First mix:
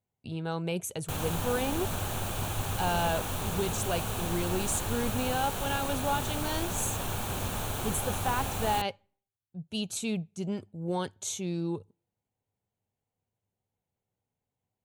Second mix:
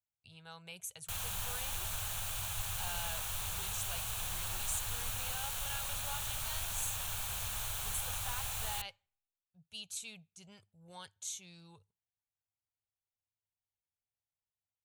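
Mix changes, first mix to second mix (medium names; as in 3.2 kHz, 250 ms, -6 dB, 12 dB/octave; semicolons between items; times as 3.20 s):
speech -5.5 dB; master: add amplifier tone stack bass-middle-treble 10-0-10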